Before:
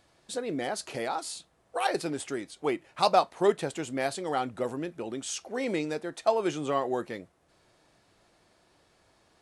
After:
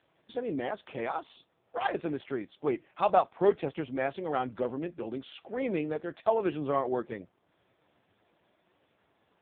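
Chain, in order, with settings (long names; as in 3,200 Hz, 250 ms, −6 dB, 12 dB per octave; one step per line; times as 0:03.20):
AMR narrowband 4.75 kbit/s 8,000 Hz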